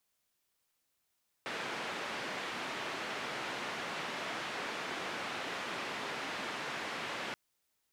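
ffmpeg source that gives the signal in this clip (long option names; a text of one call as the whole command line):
ffmpeg -f lavfi -i "anoisesrc=color=white:duration=5.88:sample_rate=44100:seed=1,highpass=frequency=190,lowpass=frequency=2300,volume=-24.9dB" out.wav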